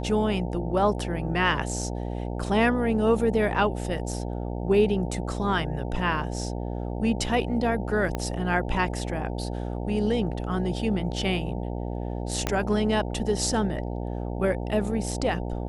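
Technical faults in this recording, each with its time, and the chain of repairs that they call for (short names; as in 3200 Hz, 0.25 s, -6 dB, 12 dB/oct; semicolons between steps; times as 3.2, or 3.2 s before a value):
buzz 60 Hz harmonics 15 -31 dBFS
8.15 pop -15 dBFS
12.47 pop -10 dBFS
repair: de-click; de-hum 60 Hz, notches 15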